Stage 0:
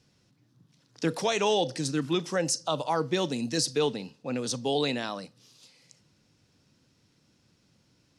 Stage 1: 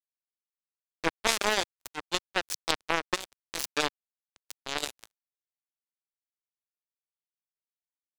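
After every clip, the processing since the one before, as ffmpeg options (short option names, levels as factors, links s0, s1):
-af "acrusher=bits=2:mix=0:aa=0.5,equalizer=f=150:w=1.3:g=-9.5,volume=2.37"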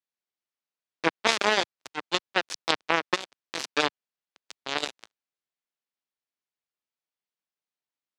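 -af "highpass=140,lowpass=5100,volume=1.58"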